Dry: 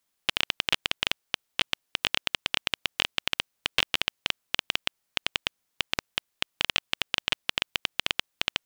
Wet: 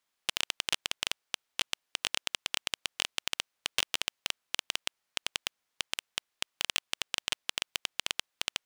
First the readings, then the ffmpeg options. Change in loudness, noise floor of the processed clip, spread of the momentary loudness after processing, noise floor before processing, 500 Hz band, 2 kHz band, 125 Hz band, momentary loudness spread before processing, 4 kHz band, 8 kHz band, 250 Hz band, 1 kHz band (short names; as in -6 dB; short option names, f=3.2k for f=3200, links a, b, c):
-5.0 dB, -83 dBFS, 5 LU, -78 dBFS, -7.0 dB, -6.5 dB, -10.5 dB, 5 LU, -5.0 dB, +4.0 dB, -9.0 dB, -6.0 dB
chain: -filter_complex "[0:a]aeval=exprs='(mod(2*val(0)+1,2)-1)/2':c=same,asplit=2[a][b];[b]highpass=f=720:p=1,volume=7dB,asoftclip=type=tanh:threshold=-6dB[c];[a][c]amix=inputs=2:normalize=0,lowpass=f=3.8k:p=1,volume=-6dB,volume=-2.5dB"